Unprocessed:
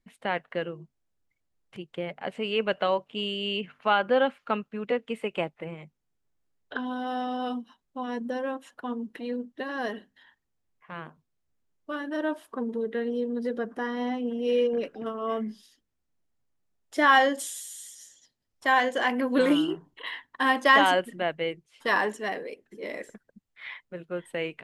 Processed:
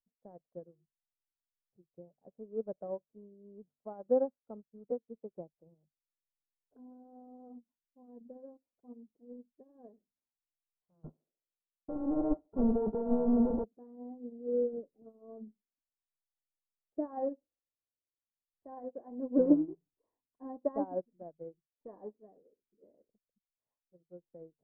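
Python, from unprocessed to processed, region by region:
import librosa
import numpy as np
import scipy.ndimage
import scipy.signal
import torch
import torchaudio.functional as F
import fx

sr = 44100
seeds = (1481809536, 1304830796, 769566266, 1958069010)

y = fx.chain(x, sr, fx.sample_sort(block=32),
    fx.leveller(passes=5),
    fx.echo_banded(ms=72, feedback_pct=52, hz=540.0, wet_db=-12.0), at=(11.04, 13.64))
y = scipy.signal.sosfilt(scipy.signal.cheby2(4, 80, 3800.0, 'lowpass', fs=sr, output='sos'), y)
y = fx.low_shelf(y, sr, hz=99.0, db=9.0)
y = fx.upward_expand(y, sr, threshold_db=-39.0, expansion=2.5)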